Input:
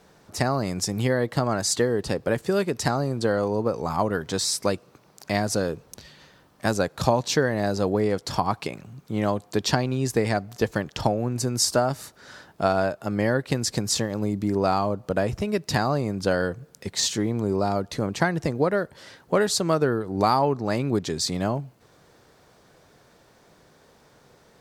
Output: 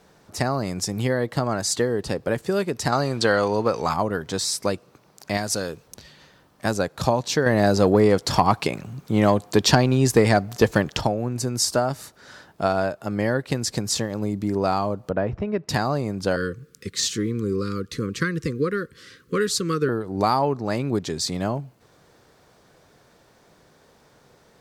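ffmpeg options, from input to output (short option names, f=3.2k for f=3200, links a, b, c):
-filter_complex "[0:a]asettb=1/sr,asplit=3[a][b][c];[a]atrim=end=2.924[d];[b]atrim=start=2.92:end=3.94,asetpts=PTS-STARTPTS,afade=t=in:d=0.004:c=qsin,afade=t=out:st=1.016:d=0.004:c=qsin,equalizer=f=2.9k:w=0.34:g=12[e];[c]atrim=start=3.936[f];[d][e]acrossfade=d=0.004:c1=hsin:c2=qsin[g];[g][f]acrossfade=d=0.004:c1=qsin:c2=hsin,asettb=1/sr,asplit=3[h][i][j];[h]atrim=end=5.374[k];[i]atrim=start=5.37:end=5.88,asetpts=PTS-STARTPTS,afade=t=in:d=0.004:c=qsin,afade=t=out:st=0.506:d=0.004:c=qsin,tiltshelf=f=1.4k:g=-4.5[l];[j]atrim=start=5.876[m];[k][l]acrossfade=d=0.004:c1=hsin:c2=qsin[n];[n][m]acrossfade=d=0.004:c1=qsin:c2=hsin,asettb=1/sr,asplit=3[o][p][q];[o]atrim=end=7.464[r];[p]atrim=start=7.46:end=11,asetpts=PTS-STARTPTS,afade=t=in:d=0.004:c=qsin,afade=t=out:st=3.536:d=0.004:c=qsin,acontrast=77[s];[q]atrim=start=10.996[t];[r][s]acrossfade=d=0.004:c1=hsin:c2=qsin[u];[u][t]acrossfade=d=0.004:c1=qsin:c2=hsin,asettb=1/sr,asplit=3[v][w][x];[v]atrim=end=15.104[y];[w]atrim=start=15.1:end=15.69,asetpts=PTS-STARTPTS,afade=t=in:d=0.004:c=qsin,afade=t=out:st=0.586:d=0.004:c=qsin,lowpass=1.9k[z];[x]atrim=start=15.686[aa];[y][z]acrossfade=d=0.004:c1=hsin:c2=qsin[ab];[ab][aa]acrossfade=d=0.004:c1=qsin:c2=hsin,asettb=1/sr,asplit=3[ac][ad][ae];[ac]atrim=end=16.364[af];[ad]atrim=start=16.36:end=19.89,asetpts=PTS-STARTPTS,afade=t=in:d=0.004:c=qsin,afade=t=out:st=3.526:d=0.004:c=qsin,asuperstop=centerf=750:order=12:qfactor=1.3[ag];[ae]atrim=start=19.886[ah];[af][ag]acrossfade=d=0.004:c1=hsin:c2=qsin[ai];[ai][ah]acrossfade=d=0.004:c1=qsin:c2=hsin"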